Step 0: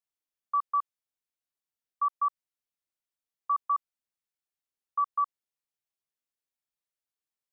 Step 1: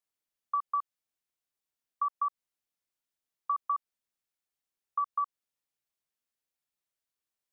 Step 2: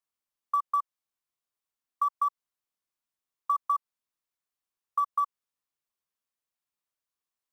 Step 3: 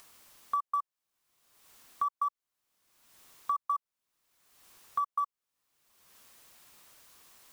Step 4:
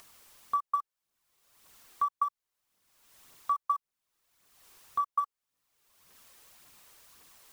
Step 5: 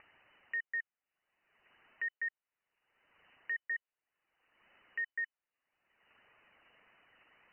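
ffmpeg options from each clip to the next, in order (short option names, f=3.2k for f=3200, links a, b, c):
-af "acompressor=threshold=-29dB:ratio=6,volume=1.5dB"
-filter_complex "[0:a]equalizer=f=1.1k:w=2.9:g=6.5,asplit=2[a][b];[b]acrusher=bits=4:mode=log:mix=0:aa=0.000001,volume=-11dB[c];[a][c]amix=inputs=2:normalize=0,volume=-4.5dB"
-af "acompressor=mode=upward:threshold=-26dB:ratio=2.5,volume=-4dB"
-af "aphaser=in_gain=1:out_gain=1:delay=2.6:decay=0.36:speed=1.8:type=triangular"
-af "volume=32dB,asoftclip=hard,volume=-32dB,lowpass=f=2.6k:t=q:w=0.5098,lowpass=f=2.6k:t=q:w=0.6013,lowpass=f=2.6k:t=q:w=0.9,lowpass=f=2.6k:t=q:w=2.563,afreqshift=-3000,volume=-1dB"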